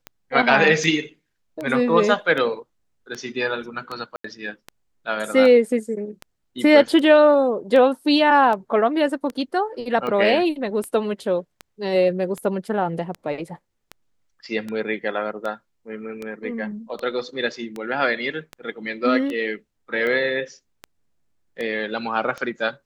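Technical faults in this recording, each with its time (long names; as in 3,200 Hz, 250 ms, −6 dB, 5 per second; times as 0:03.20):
scratch tick 78 rpm −17 dBFS
0:04.16–0:04.24: drop-out 84 ms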